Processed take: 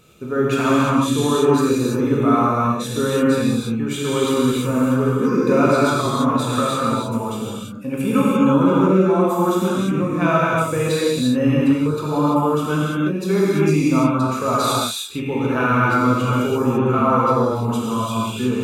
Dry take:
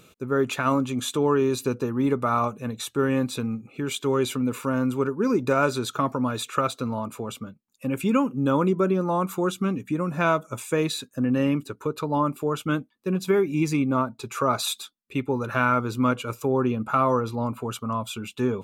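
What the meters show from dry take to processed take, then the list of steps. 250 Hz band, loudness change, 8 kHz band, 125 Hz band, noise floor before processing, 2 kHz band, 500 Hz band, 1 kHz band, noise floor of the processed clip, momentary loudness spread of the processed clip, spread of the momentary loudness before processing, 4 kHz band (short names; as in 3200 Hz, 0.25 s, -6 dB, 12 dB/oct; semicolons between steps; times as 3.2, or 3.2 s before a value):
+7.5 dB, +7.0 dB, +5.5 dB, +7.5 dB, -59 dBFS, +5.5 dB, +6.0 dB, +6.5 dB, -28 dBFS, 7 LU, 8 LU, +6.0 dB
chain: low shelf 350 Hz +3.5 dB; non-linear reverb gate 0.37 s flat, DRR -7.5 dB; gain -2.5 dB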